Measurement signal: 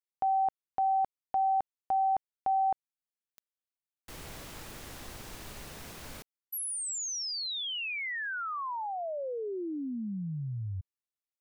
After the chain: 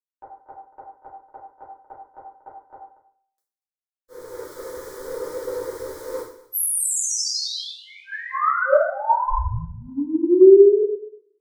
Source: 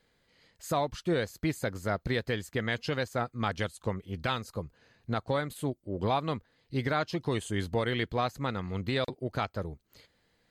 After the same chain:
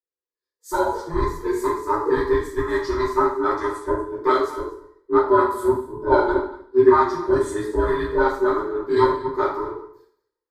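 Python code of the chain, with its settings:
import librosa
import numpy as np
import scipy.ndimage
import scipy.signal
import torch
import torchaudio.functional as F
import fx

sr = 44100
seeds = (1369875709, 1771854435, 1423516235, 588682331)

p1 = fx.band_invert(x, sr, width_hz=500)
p2 = fx.rider(p1, sr, range_db=3, speed_s=0.5)
p3 = p1 + F.gain(torch.from_numpy(p2), 0.0).numpy()
p4 = fx.peak_eq(p3, sr, hz=590.0, db=14.0, octaves=2.3)
p5 = fx.fixed_phaser(p4, sr, hz=730.0, stages=6)
p6 = p5 + fx.echo_single(p5, sr, ms=239, db=-11.5, dry=0)
p7 = fx.rev_double_slope(p6, sr, seeds[0], early_s=0.68, late_s=1.9, knee_db=-22, drr_db=-6.0)
p8 = fx.band_widen(p7, sr, depth_pct=100)
y = F.gain(torch.from_numpy(p8), -9.0).numpy()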